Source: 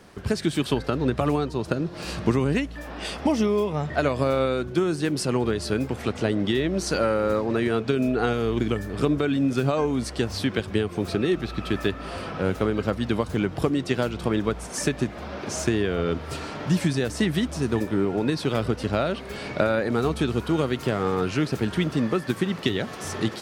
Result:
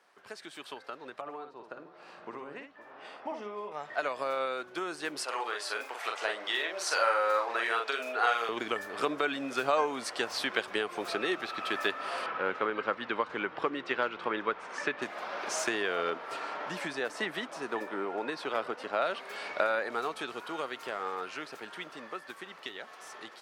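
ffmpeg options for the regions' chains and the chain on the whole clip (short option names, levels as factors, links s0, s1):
-filter_complex "[0:a]asettb=1/sr,asplit=3[s0][s1][s2];[s0]atrim=end=1.214[s3];[s1]atrim=start=1.21:end=3.72,asetpts=PTS-STARTPTS,afade=t=in:d=0.004:c=qsin,afade=t=out:st=2.506:d=0.004:c=qsin,lowpass=f=1200:p=1,aecho=1:1:57|515:0.473|0.15,atrim=end_sample=110691[s4];[s2]atrim=start=3.716[s5];[s3][s4]acrossfade=d=0.004:c1=hsin:c2=qsin[s6];[s6][s5]acrossfade=d=0.004:c1=qsin:c2=hsin,asettb=1/sr,asplit=3[s7][s8][s9];[s7]atrim=end=5.244[s10];[s8]atrim=start=5.24:end=8.49,asetpts=PTS-STARTPTS,afade=t=in:d=0.004:c=qsin,afade=t=out:st=3.246:d=0.004:c=qsin,highpass=600,asplit=2[s11][s12];[s12]adelay=43,volume=0.631[s13];[s11][s13]amix=inputs=2:normalize=0,atrim=end_sample=143325[s14];[s9]atrim=start=8.486[s15];[s10][s14]acrossfade=d=0.004:c1=hsin:c2=qsin[s16];[s16][s15]acrossfade=d=0.004:c1=qsin:c2=hsin,asettb=1/sr,asplit=3[s17][s18][s19];[s17]atrim=end=12.264[s20];[s18]atrim=start=12.26:end=15.02,asetpts=PTS-STARTPTS,afade=t=in:d=0.004:c=qsin,afade=t=out:st=2.756:d=0.004:c=qsin,lowpass=2800,equalizer=f=690:t=o:w=0.45:g=-7[s21];[s19]atrim=start=15.016[s22];[s20][s21]acrossfade=d=0.004:c1=hsin:c2=qsin[s23];[s23][s22]acrossfade=d=0.004:c1=qsin:c2=hsin,asettb=1/sr,asplit=3[s24][s25][s26];[s24]atrim=end=16.104[s27];[s25]atrim=start=16.1:end=19.02,asetpts=PTS-STARTPTS,afade=t=in:d=0.004:c=qsin,afade=t=out:st=2.916:d=0.004:c=qsin,highpass=130,highshelf=f=3200:g=-9.5[s28];[s26]atrim=start=19.016[s29];[s27][s28]acrossfade=d=0.004:c1=hsin:c2=qsin[s30];[s30][s29]acrossfade=d=0.004:c1=qsin:c2=hsin,highpass=900,highshelf=f=2200:g=-10,dynaudnorm=f=890:g=11:m=4.73,volume=0.447"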